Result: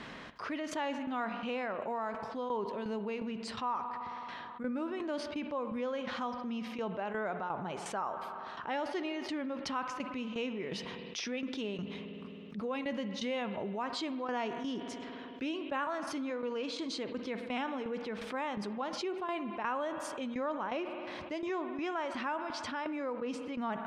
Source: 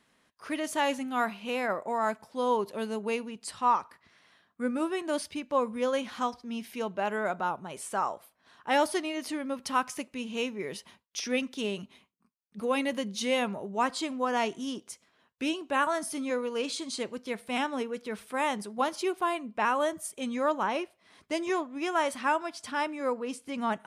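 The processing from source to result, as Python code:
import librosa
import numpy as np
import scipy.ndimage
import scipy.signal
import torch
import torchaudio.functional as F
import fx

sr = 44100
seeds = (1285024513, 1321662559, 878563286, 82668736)

y = fx.high_shelf(x, sr, hz=9300.0, db=7.0)
y = fx.tremolo_shape(y, sr, shape='saw_down', hz=2.8, depth_pct=80)
y = fx.air_absorb(y, sr, metres=190.0)
y = fx.rev_spring(y, sr, rt60_s=1.5, pass_ms=(53,), chirp_ms=25, drr_db=16.0)
y = fx.env_flatten(y, sr, amount_pct=70)
y = y * librosa.db_to_amplitude(-8.0)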